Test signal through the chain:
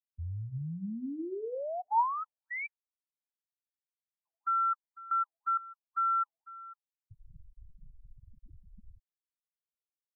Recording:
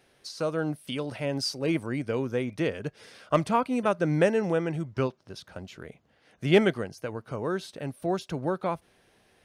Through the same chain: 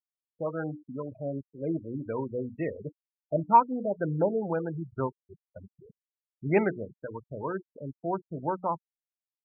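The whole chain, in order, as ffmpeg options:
-af "bandreject=f=60:t=h:w=6,bandreject=f=120:t=h:w=6,bandreject=f=180:t=h:w=6,bandreject=f=240:t=h:w=6,bandreject=f=300:t=h:w=6,bandreject=f=360:t=h:w=6,bandreject=f=420:t=h:w=6,bandreject=f=480:t=h:w=6,afftfilt=real='re*gte(hypot(re,im),0.0447)':imag='im*gte(hypot(re,im),0.0447)':win_size=1024:overlap=0.75,equalizer=f=930:w=6.1:g=14,afftfilt=real='re*lt(b*sr/1024,680*pow(2900/680,0.5+0.5*sin(2*PI*2*pts/sr)))':imag='im*lt(b*sr/1024,680*pow(2900/680,0.5+0.5*sin(2*PI*2*pts/sr)))':win_size=1024:overlap=0.75,volume=-3.5dB"

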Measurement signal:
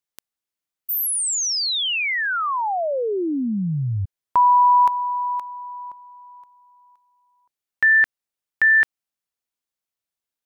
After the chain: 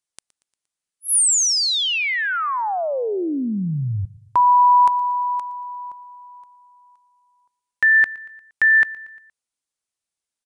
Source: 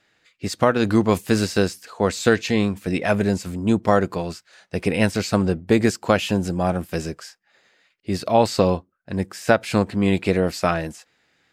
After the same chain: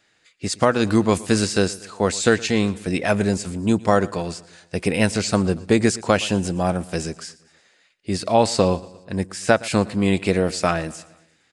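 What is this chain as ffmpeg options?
-filter_complex "[0:a]aresample=22050,aresample=44100,highshelf=f=7.3k:g=11.5,asplit=2[a][b];[b]aecho=0:1:117|234|351|468:0.0891|0.0481|0.026|0.014[c];[a][c]amix=inputs=2:normalize=0"

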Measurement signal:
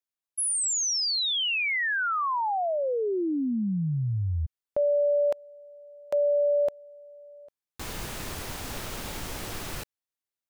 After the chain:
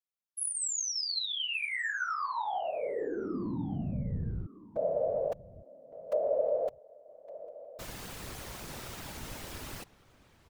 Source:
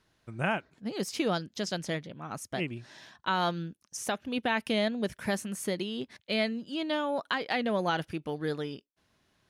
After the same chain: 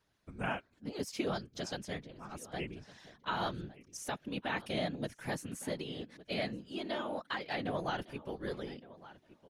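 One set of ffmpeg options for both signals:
-filter_complex "[0:a]asplit=2[a][b];[b]adelay=1162,lowpass=f=3.4k:p=1,volume=-18dB,asplit=2[c][d];[d]adelay=1162,lowpass=f=3.4k:p=1,volume=0.16[e];[a][c][e]amix=inputs=3:normalize=0,afftfilt=real='hypot(re,im)*cos(2*PI*random(0))':imag='hypot(re,im)*sin(2*PI*random(1))':win_size=512:overlap=0.75,volume=-1dB"

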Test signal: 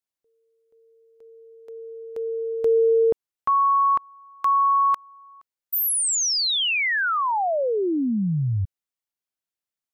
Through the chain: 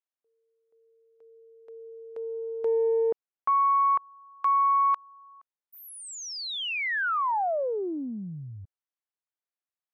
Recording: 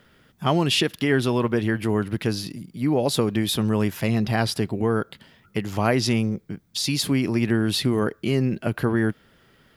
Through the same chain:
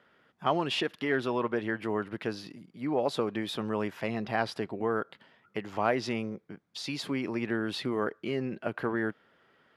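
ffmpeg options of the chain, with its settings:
-af "aeval=exprs='0.422*(cos(1*acos(clip(val(0)/0.422,-1,1)))-cos(1*PI/2))+0.0335*(cos(4*acos(clip(val(0)/0.422,-1,1)))-cos(4*PI/2))+0.0188*(cos(5*acos(clip(val(0)/0.422,-1,1)))-cos(5*PI/2))+0.0119*(cos(6*acos(clip(val(0)/0.422,-1,1)))-cos(6*PI/2))+0.00944*(cos(7*acos(clip(val(0)/0.422,-1,1)))-cos(7*PI/2))':c=same,bandpass=f=960:t=q:w=0.59:csg=0,volume=-4dB"

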